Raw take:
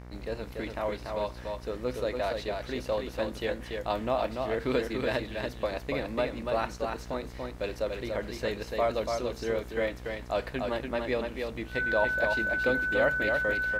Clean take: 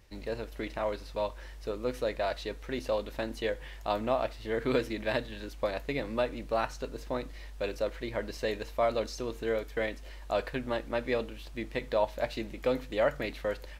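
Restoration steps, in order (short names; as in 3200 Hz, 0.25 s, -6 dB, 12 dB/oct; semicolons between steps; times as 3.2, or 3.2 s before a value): de-hum 61.2 Hz, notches 38; notch 1500 Hz, Q 30; inverse comb 0.288 s -4.5 dB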